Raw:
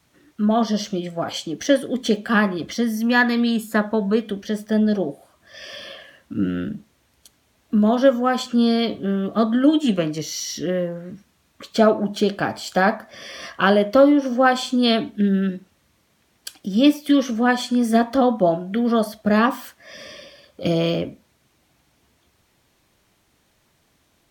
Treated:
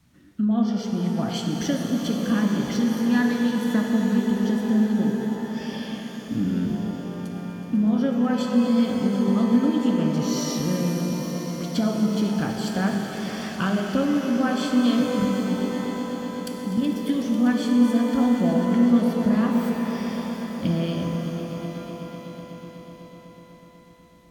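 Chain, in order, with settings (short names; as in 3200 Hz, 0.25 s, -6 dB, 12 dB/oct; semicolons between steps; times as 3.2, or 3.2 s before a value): 15.2–16.96 level quantiser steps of 16 dB; resonant low shelf 300 Hz +9 dB, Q 1.5; compressor 2.5:1, threshold -20 dBFS, peak gain reduction 11 dB; swelling echo 0.124 s, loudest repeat 5, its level -15 dB; shimmer reverb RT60 3 s, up +12 st, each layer -8 dB, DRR 3 dB; gain -4.5 dB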